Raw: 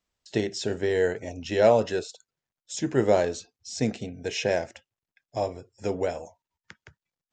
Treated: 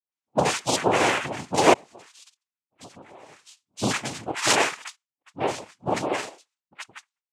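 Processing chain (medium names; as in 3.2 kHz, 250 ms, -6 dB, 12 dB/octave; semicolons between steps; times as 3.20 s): comb 2.9 ms, depth 92%; gate with hold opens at -56 dBFS; high-order bell 2.7 kHz +10 dB; phase dispersion highs, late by 129 ms, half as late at 1.1 kHz; 1.73–3.73 s: compression 8:1, threshold -46 dBFS, peak gain reduction 30.5 dB; noise-vocoded speech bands 4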